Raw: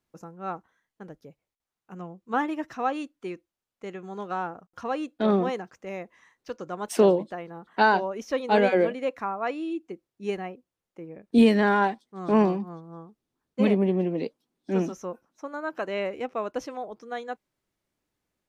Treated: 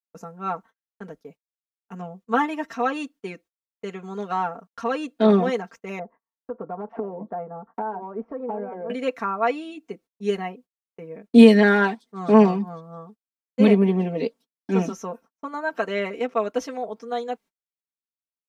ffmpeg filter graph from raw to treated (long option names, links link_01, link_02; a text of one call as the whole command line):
ffmpeg -i in.wav -filter_complex "[0:a]asettb=1/sr,asplit=3[link_01][link_02][link_03];[link_01]atrim=end=5.994[link_04];[link_02]atrim=start=5.99:end=8.9,asetpts=PTS-STARTPTS,afade=type=in:duration=0.004:curve=qsin,afade=type=out:start_time=2.906:duration=0.004:curve=qsin,lowpass=frequency=1200:width=0.5412,lowpass=frequency=1200:width=1.3066,equalizer=frequency=770:width_type=o:width=0.28:gain=4.5,acompressor=threshold=-31dB:ratio=12:attack=3.2:release=140:knee=1:detection=peak[link_05];[link_03]atrim=start=8.896[link_06];[link_04][link_05]acrossfade=duration=0.004:curve1=hsin:curve2=qsin[link_07];[link_07][link_06]acrossfade=duration=0.004:curve1=qsin:curve2=hsin,agate=range=-37dB:threshold=-51dB:ratio=16:detection=peak,lowshelf=frequency=94:gain=-11,aecho=1:1:4.4:0.89,volume=3dB" out.wav